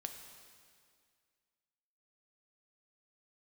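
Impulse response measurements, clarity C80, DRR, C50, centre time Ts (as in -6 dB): 7.5 dB, 4.5 dB, 6.5 dB, 40 ms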